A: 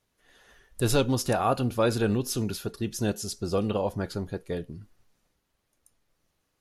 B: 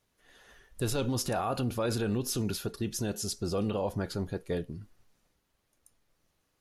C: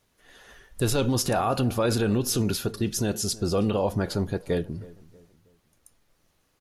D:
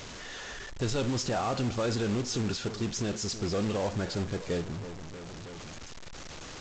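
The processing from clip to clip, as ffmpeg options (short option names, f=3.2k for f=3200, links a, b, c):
-af "alimiter=limit=-22dB:level=0:latency=1:release=36"
-filter_complex "[0:a]asplit=2[a][b];[b]adelay=319,lowpass=f=1.4k:p=1,volume=-20dB,asplit=2[c][d];[d]adelay=319,lowpass=f=1.4k:p=1,volume=0.4,asplit=2[e][f];[f]adelay=319,lowpass=f=1.4k:p=1,volume=0.4[g];[a][c][e][g]amix=inputs=4:normalize=0,volume=6.5dB"
-af "aeval=exprs='val(0)+0.5*0.0376*sgn(val(0))':c=same,aresample=16000,acrusher=bits=3:mode=log:mix=0:aa=0.000001,aresample=44100,volume=-7.5dB"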